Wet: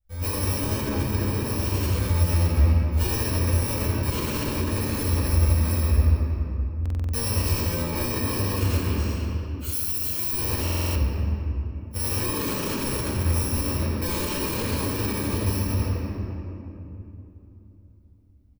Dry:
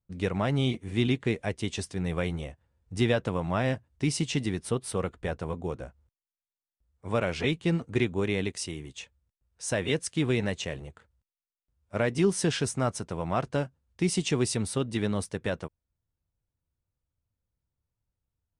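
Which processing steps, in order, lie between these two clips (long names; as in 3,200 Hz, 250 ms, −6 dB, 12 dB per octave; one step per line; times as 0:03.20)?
samples in bit-reversed order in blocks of 64 samples
0:00.79–0:01.38: downward compressor, threshold −29 dBFS, peak gain reduction 9 dB
0:09.64–0:10.33: first-order pre-emphasis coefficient 0.8
echo with shifted repeats 93 ms, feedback 32%, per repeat +77 Hz, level −3 dB
rectangular room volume 150 cubic metres, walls hard, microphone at 1.9 metres
brickwall limiter −9.5 dBFS, peak gain reduction 9.5 dB
low shelf with overshoot 100 Hz +13 dB, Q 3
buffer that repeats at 0:06.81/0:10.63, samples 2,048, times 6
level −7.5 dB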